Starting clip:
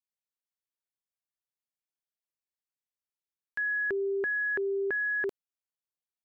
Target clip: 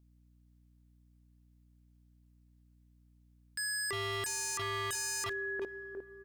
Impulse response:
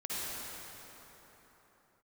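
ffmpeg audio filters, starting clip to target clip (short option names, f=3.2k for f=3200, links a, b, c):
-filter_complex "[0:a]asplit=2[a][b];[b]adelay=355,lowpass=f=1.2k:p=1,volume=-10dB,asplit=2[c][d];[d]adelay=355,lowpass=f=1.2k:p=1,volume=0.48,asplit=2[e][f];[f]adelay=355,lowpass=f=1.2k:p=1,volume=0.48,asplit=2[g][h];[h]adelay=355,lowpass=f=1.2k:p=1,volume=0.48,asplit=2[i][j];[j]adelay=355,lowpass=f=1.2k:p=1,volume=0.48[k];[a][c][e][g][i][k]amix=inputs=6:normalize=0,aeval=exprs='0.0133*(abs(mod(val(0)/0.0133+3,4)-2)-1)':c=same,asplit=2[l][m];[1:a]atrim=start_sample=2205,lowpass=2.2k[n];[m][n]afir=irnorm=-1:irlink=0,volume=-25.5dB[o];[l][o]amix=inputs=2:normalize=0,aeval=exprs='val(0)+0.000355*(sin(2*PI*60*n/s)+sin(2*PI*2*60*n/s)/2+sin(2*PI*3*60*n/s)/3+sin(2*PI*4*60*n/s)/4+sin(2*PI*5*60*n/s)/5)':c=same,volume=6dB"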